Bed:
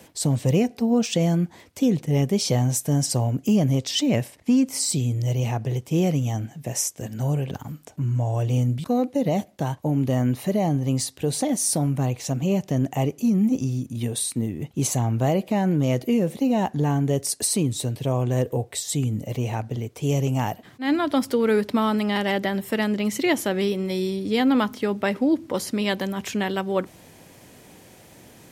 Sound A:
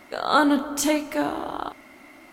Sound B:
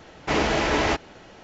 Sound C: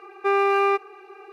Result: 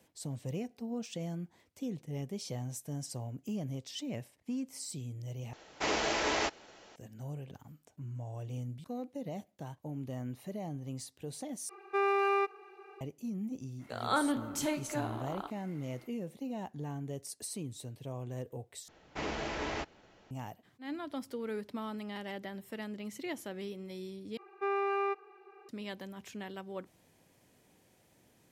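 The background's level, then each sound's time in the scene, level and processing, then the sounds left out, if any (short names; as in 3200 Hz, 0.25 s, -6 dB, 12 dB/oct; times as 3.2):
bed -18 dB
5.53 replace with B -8.5 dB + tone controls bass -10 dB, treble +7 dB
11.69 replace with C -9 dB
13.78 add A -11.5 dB, fades 0.05 s
18.88 replace with B -14.5 dB
24.37 replace with C -11.5 dB + high shelf 4000 Hz -10.5 dB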